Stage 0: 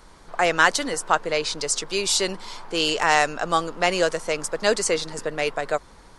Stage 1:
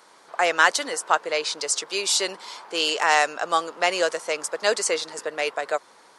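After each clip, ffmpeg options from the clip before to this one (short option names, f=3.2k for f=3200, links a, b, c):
-af "highpass=430"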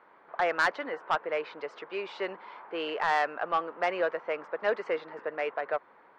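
-af "lowpass=f=2.2k:w=0.5412,lowpass=f=2.2k:w=1.3066,asoftclip=type=tanh:threshold=-13.5dB,volume=-4dB"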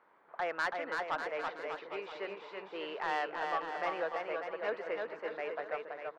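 -af "aecho=1:1:330|594|805.2|974.2|1109:0.631|0.398|0.251|0.158|0.1,volume=-8dB"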